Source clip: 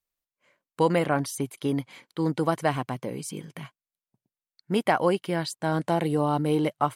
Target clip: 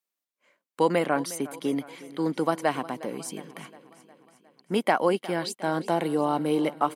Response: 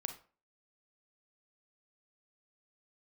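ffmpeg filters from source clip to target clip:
-af "highpass=frequency=190:width=0.5412,highpass=frequency=190:width=1.3066,aecho=1:1:359|718|1077|1436|1795:0.126|0.0743|0.0438|0.0259|0.0153"

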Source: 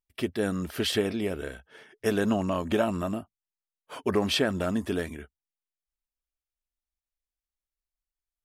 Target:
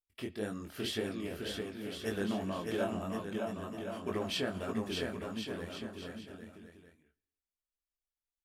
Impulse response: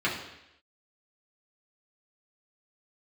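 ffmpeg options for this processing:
-filter_complex "[0:a]flanger=delay=17.5:depth=6.3:speed=1.9,aecho=1:1:610|1068|1411|1668|1861:0.631|0.398|0.251|0.158|0.1,asplit=2[link_01][link_02];[1:a]atrim=start_sample=2205,highshelf=frequency=3100:gain=11.5[link_03];[link_02][link_03]afir=irnorm=-1:irlink=0,volume=-30dB[link_04];[link_01][link_04]amix=inputs=2:normalize=0,volume=-7dB"

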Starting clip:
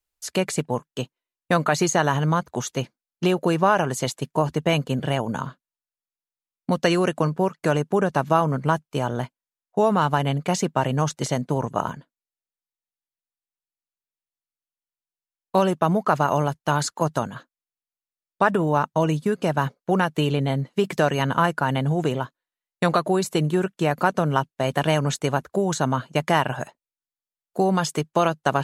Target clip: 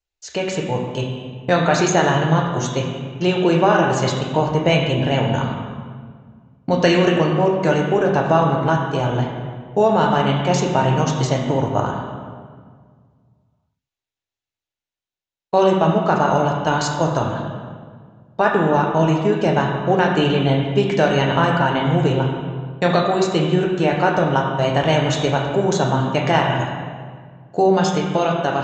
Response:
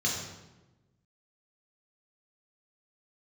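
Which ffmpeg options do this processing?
-filter_complex "[0:a]atempo=1,dynaudnorm=framelen=140:gausssize=11:maxgain=6.5dB,asplit=2[link_01][link_02];[1:a]atrim=start_sample=2205,asetrate=23373,aresample=44100[link_03];[link_02][link_03]afir=irnorm=-1:irlink=0,volume=-14.5dB[link_04];[link_01][link_04]amix=inputs=2:normalize=0,aresample=16000,aresample=44100"

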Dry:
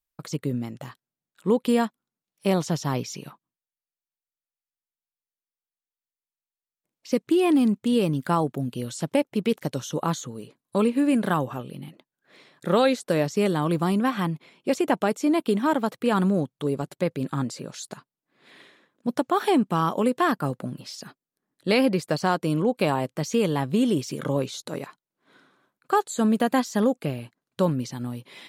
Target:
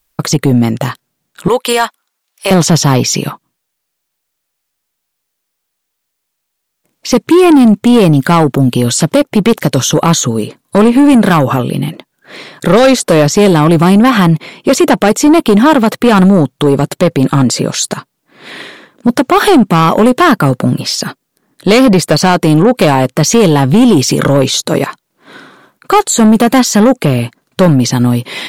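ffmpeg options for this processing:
ffmpeg -i in.wav -filter_complex "[0:a]asettb=1/sr,asplit=3[link_01][link_02][link_03];[link_01]atrim=end=1.484[link_04];[link_02]atrim=start=1.48:end=2.51,asetpts=PTS-STARTPTS,afade=type=in:duration=0.004:curve=qsin,afade=type=out:start_time=1.026:duration=0.004:curve=qsin,highpass=820[link_05];[link_03]atrim=start=2.506[link_06];[link_04][link_05]acrossfade=duration=0.004:curve1=hsin:curve2=qsin[link_07];[link_07][link_06]acrossfade=duration=0.004:curve1=qsin:curve2=hsin,asoftclip=type=tanh:threshold=-20.5dB,alimiter=level_in=24.5dB:limit=-1dB:release=50:level=0:latency=1,volume=-1dB" out.wav

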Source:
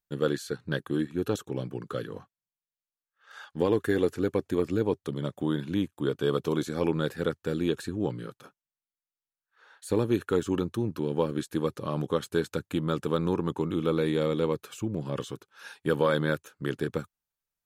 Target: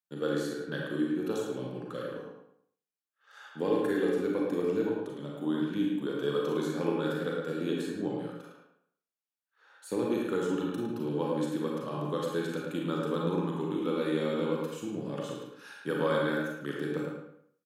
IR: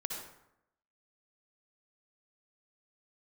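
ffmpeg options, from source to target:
-filter_complex "[0:a]highpass=frequency=150:width=0.5412,highpass=frequency=150:width=1.3066,asettb=1/sr,asplit=3[link_01][link_02][link_03];[link_01]atrim=end=4.884[link_04];[link_02]atrim=start=4.88:end=5.37,asetpts=PTS-STARTPTS,afade=type=in:duration=0.004:curve=qsin,afade=type=out:start_time=0.486:duration=0.004:curve=qsin,acompressor=threshold=-32dB:ratio=6[link_05];[link_03]atrim=start=5.366[link_06];[link_04][link_05]acrossfade=duration=0.004:curve1=hsin:curve2=qsin[link_07];[link_07][link_06]acrossfade=duration=0.004:curve1=qsin:curve2=hsin,asplit=2[link_08][link_09];[link_09]adelay=108,lowpass=frequency=3500:poles=1,volume=-4dB,asplit=2[link_10][link_11];[link_11]adelay=108,lowpass=frequency=3500:poles=1,volume=0.33,asplit=2[link_12][link_13];[link_13]adelay=108,lowpass=frequency=3500:poles=1,volume=0.33,asplit=2[link_14][link_15];[link_15]adelay=108,lowpass=frequency=3500:poles=1,volume=0.33[link_16];[link_08][link_10][link_12][link_14][link_16]amix=inputs=5:normalize=0[link_17];[1:a]atrim=start_sample=2205,asetrate=74970,aresample=44100[link_18];[link_17][link_18]afir=irnorm=-1:irlink=0"

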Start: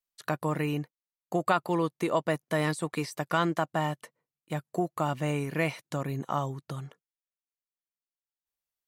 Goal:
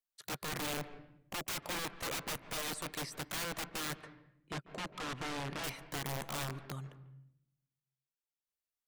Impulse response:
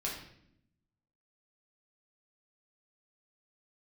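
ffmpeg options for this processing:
-filter_complex "[0:a]aeval=exprs='(mod(23.7*val(0)+1,2)-1)/23.7':channel_layout=same,asettb=1/sr,asplit=3[link_01][link_02][link_03];[link_01]atrim=end=4.034[link_04];[link_02]atrim=start=4.03:end=5.64,asetpts=PTS-STARTPTS,afade=type=in:duration=0.004:curve=qsin,afade=type=out:start_time=1.606:duration=0.004:curve=qsin,adynamicsmooth=sensitivity=1.5:basefreq=4900[link_05];[link_03]atrim=start=5.636[link_06];[link_04][link_05]acrossfade=duration=0.004:curve1=hsin:curve2=qsin[link_07];[link_07][link_06]acrossfade=duration=0.004:curve1=qsin:curve2=hsin,asplit=2[link_08][link_09];[1:a]atrim=start_sample=2205,lowpass=2300,adelay=143[link_10];[link_09][link_10]afir=irnorm=-1:irlink=0,volume=-15.5dB[link_11];[link_08][link_11]amix=inputs=2:normalize=0,volume=-5.5dB"

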